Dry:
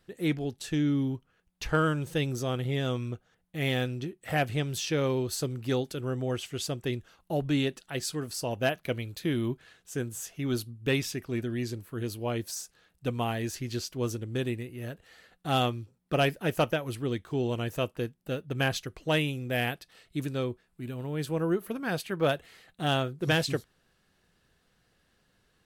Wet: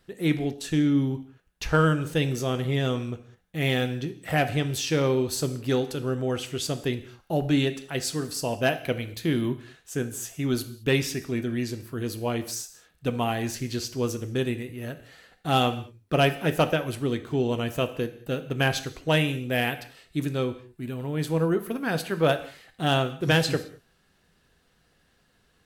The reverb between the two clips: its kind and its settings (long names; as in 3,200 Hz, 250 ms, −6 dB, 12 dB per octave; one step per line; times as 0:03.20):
reverb whose tail is shaped and stops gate 240 ms falling, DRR 9 dB
level +3.5 dB